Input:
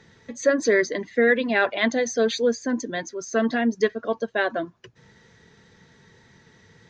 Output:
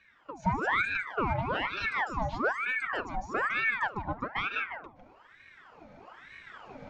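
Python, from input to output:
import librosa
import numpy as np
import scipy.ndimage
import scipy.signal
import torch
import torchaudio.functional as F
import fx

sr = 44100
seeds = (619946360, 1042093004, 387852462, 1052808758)

y = fx.recorder_agc(x, sr, target_db=-11.0, rise_db_per_s=6.7, max_gain_db=30)
y = fx.low_shelf(y, sr, hz=230.0, db=6.0)
y = fx.cheby_harmonics(y, sr, harmonics=(5,), levels_db=(-24,), full_scale_db=-8.5)
y = fx.bandpass_q(y, sr, hz=420.0, q=0.52)
y = y + 10.0 ** (-7.0 / 20.0) * np.pad(y, (int(153 * sr / 1000.0), 0))[:len(y)]
y = fx.room_shoebox(y, sr, seeds[0], volume_m3=3300.0, walls='furnished', distance_m=0.92)
y = fx.ring_lfo(y, sr, carrier_hz=1200.0, swing_pct=70, hz=1.1)
y = y * 10.0 ** (-8.0 / 20.0)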